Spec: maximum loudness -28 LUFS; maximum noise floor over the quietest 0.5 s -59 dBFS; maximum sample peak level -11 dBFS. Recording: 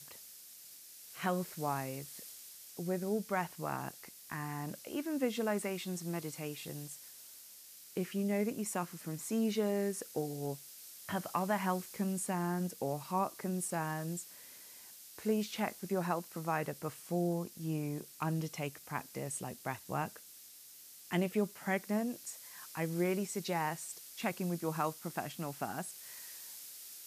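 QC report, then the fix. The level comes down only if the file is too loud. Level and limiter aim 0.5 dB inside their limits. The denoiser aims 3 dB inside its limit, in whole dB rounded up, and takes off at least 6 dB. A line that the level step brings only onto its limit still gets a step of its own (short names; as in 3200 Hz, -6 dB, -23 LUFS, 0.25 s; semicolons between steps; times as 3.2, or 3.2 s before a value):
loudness -37.5 LUFS: OK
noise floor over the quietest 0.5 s -55 dBFS: fail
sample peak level -18.5 dBFS: OK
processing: denoiser 7 dB, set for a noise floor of -55 dBFS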